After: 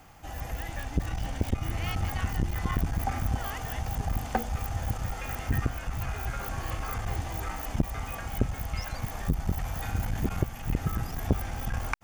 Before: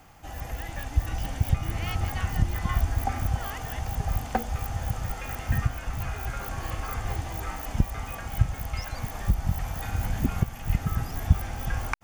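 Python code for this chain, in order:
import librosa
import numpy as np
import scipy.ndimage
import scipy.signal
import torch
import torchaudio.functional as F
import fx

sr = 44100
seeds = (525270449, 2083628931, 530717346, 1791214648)

y = fx.median_filter(x, sr, points=3, at=(0.8, 1.52))
y = fx.transformer_sat(y, sr, knee_hz=370.0)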